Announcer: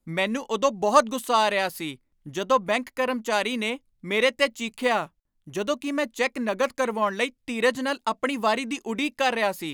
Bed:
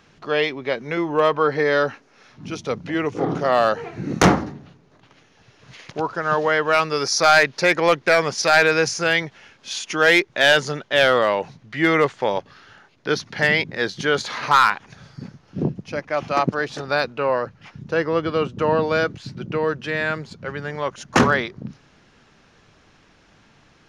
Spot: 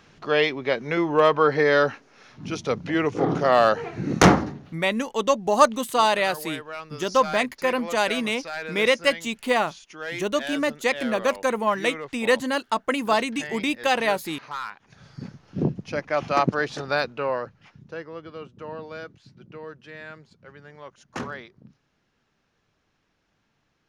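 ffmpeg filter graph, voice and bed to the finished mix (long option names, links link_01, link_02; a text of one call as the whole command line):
ffmpeg -i stem1.wav -i stem2.wav -filter_complex "[0:a]adelay=4650,volume=1.5dB[link_01];[1:a]volume=17dB,afade=type=out:start_time=4.51:duration=0.51:silence=0.125893,afade=type=in:start_time=14.78:duration=0.46:silence=0.141254,afade=type=out:start_time=16.63:duration=1.44:silence=0.158489[link_02];[link_01][link_02]amix=inputs=2:normalize=0" out.wav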